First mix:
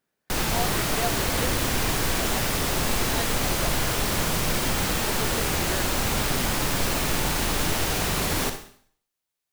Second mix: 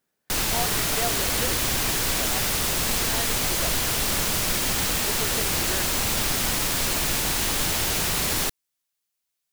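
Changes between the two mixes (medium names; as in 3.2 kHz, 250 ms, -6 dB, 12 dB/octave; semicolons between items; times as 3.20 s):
background: add treble shelf 2.2 kHz +8 dB; reverb: off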